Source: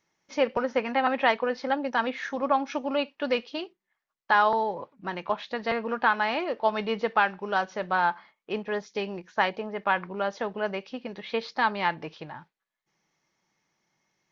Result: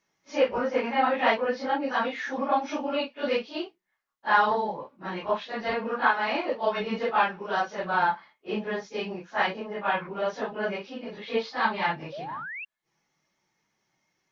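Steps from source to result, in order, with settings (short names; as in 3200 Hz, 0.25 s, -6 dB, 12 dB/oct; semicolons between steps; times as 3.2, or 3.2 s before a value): phase scrambler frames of 0.1 s; painted sound rise, 12.12–12.65, 530–2800 Hz -37 dBFS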